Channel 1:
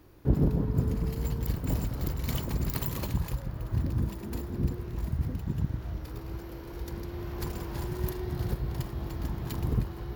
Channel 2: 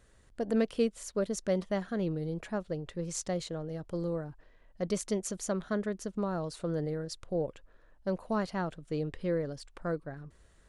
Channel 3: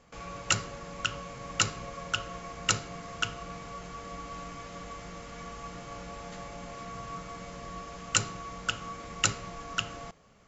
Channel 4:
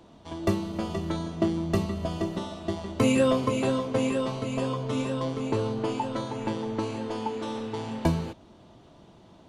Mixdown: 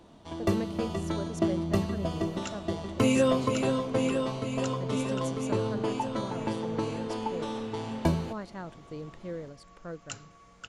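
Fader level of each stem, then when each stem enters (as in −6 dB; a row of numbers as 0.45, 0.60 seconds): muted, −7.0 dB, −15.0 dB, −1.5 dB; muted, 0.00 s, 1.95 s, 0.00 s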